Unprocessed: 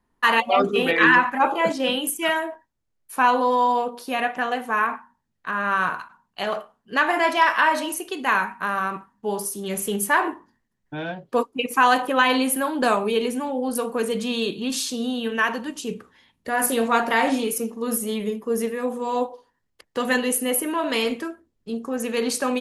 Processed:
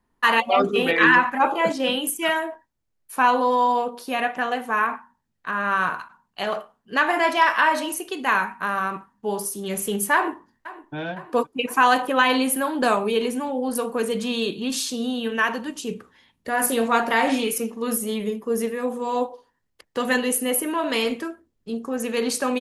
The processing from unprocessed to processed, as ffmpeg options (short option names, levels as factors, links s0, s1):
-filter_complex "[0:a]asplit=2[s0][s1];[s1]afade=t=in:st=10.14:d=0.01,afade=t=out:st=10.95:d=0.01,aecho=0:1:510|1020|1530|2040|2550|3060|3570|4080:0.141254|0.0988776|0.0692143|0.04845|0.033915|0.0237405|0.0166184|0.0116329[s2];[s0][s2]amix=inputs=2:normalize=0,asettb=1/sr,asplit=3[s3][s4][s5];[s3]atrim=end=17.294[s6];[s4]atrim=start=17.29:end=17.93,asetpts=PTS-STARTPTS,afade=t=in:d=0.004:c=qsin,afade=t=out:st=0.636:d=0.004:c=qsin,equalizer=f=2400:w=1:g=6[s7];[s5]atrim=start=17.926[s8];[s6][s7]acrossfade=d=0.004:c1=hsin:c2=qsin[s9];[s9][s8]acrossfade=d=0.004:c1=qsin:c2=hsin"